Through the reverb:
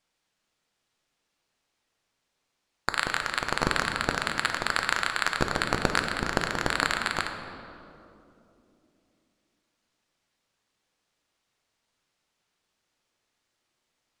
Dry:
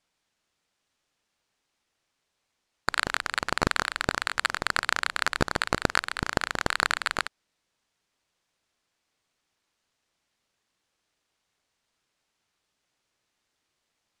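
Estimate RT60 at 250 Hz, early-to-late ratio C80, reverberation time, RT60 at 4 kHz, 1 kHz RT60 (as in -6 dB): 4.1 s, 7.0 dB, 2.9 s, 1.6 s, 2.4 s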